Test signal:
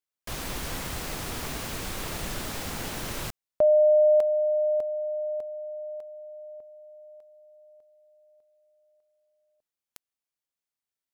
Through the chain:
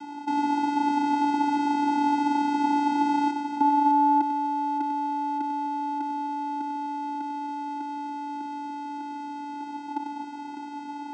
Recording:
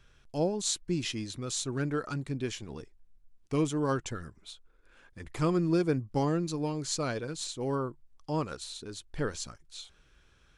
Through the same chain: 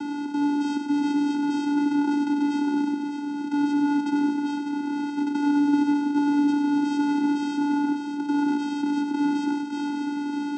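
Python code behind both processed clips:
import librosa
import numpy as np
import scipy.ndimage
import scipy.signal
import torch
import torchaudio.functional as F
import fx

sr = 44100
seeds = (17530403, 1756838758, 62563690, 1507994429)

y = fx.bin_compress(x, sr, power=0.2)
y = scipy.signal.sosfilt(scipy.signal.butter(2, 5400.0, 'lowpass', fs=sr, output='sos'), y)
y = fx.echo_multitap(y, sr, ms=(96, 252, 603), db=(-7.5, -13.0, -7.5))
y = fx.vocoder(y, sr, bands=8, carrier='square', carrier_hz=289.0)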